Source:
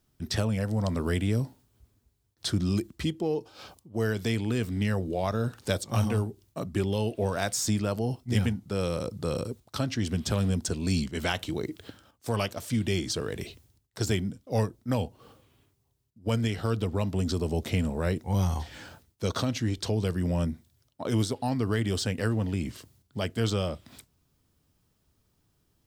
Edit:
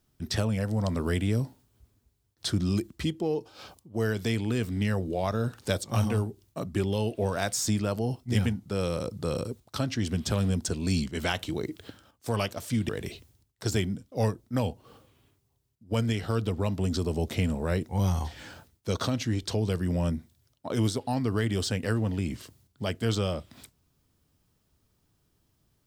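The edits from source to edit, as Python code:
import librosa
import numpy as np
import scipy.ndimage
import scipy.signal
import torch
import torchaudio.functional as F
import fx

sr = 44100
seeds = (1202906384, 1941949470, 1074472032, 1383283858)

y = fx.edit(x, sr, fx.cut(start_s=12.89, length_s=0.35), tone=tone)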